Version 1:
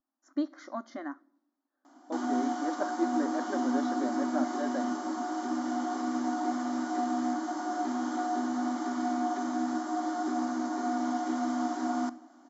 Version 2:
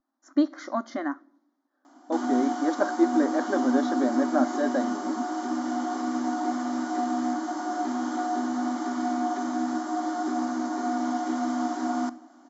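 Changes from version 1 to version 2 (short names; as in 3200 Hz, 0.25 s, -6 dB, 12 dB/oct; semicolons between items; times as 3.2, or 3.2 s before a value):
speech +8.5 dB; background +3.0 dB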